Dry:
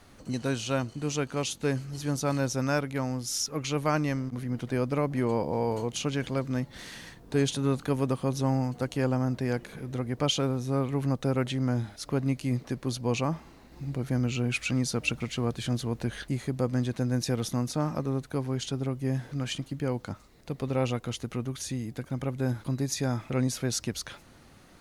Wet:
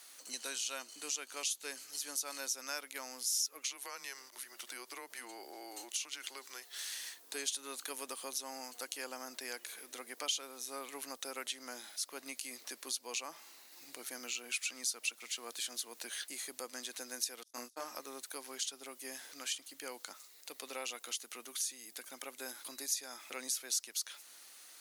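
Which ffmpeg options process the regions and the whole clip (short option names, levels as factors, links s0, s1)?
-filter_complex "[0:a]asettb=1/sr,asplit=3[s0][s1][s2];[s0]atrim=end=3.674[s3];[s1]atrim=start=3.67:end=6.91,asetpts=PTS-STARTPTS,afade=t=in:d=0.004:c=qsin,afade=t=out:st=3.236:d=0.004:c=qsin,highpass=310,acompressor=threshold=0.0251:ratio=3:attack=3.2:release=140:knee=1:detection=peak,afreqshift=-130[s4];[s2]atrim=start=6.906[s5];[s3][s4]acrossfade=d=0.004:c1=hsin:c2=qsin[s6];[s6][s5]acrossfade=d=0.004:c1=qsin:c2=hsin,asettb=1/sr,asplit=3[s7][s8][s9];[s7]atrim=end=17.434[s10];[s8]atrim=start=17.43:end=17.84,asetpts=PTS-STARTPTS,afade=t=in:d=0.004:c=qsin,afade=t=out:st=0.406:d=0.004:c=qsin,agate=range=0.00708:threshold=0.0316:ratio=16:release=100:detection=peak,asplit=2[s11][s12];[s12]adelay=25,volume=0.708[s13];[s11][s13]amix=inputs=2:normalize=0,atrim=end_sample=18081[s14];[s9]atrim=start=17.836[s15];[s10][s14]acrossfade=d=0.004:c1=hsin:c2=qsin[s16];[s16][s15]acrossfade=d=0.004:c1=qsin:c2=hsin,highpass=f=270:w=0.5412,highpass=f=270:w=1.3066,aderivative,acompressor=threshold=0.00316:ratio=2,volume=2.99"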